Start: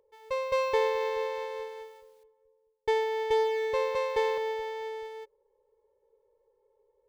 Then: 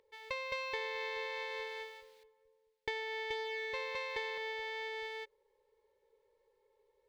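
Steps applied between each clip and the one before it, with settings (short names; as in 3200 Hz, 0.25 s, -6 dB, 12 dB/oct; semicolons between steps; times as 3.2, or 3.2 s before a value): graphic EQ 250/500/2000/4000 Hz +4/-3/+11/+10 dB; compressor 5:1, threshold -34 dBFS, peak gain reduction 13.5 dB; gain -3 dB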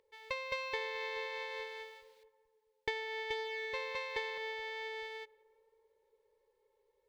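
tape echo 0.173 s, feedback 85%, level -23.5 dB, low-pass 1300 Hz; upward expander 1.5:1, over -44 dBFS; gain +2.5 dB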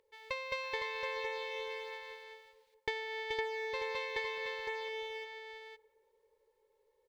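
echo 0.51 s -5.5 dB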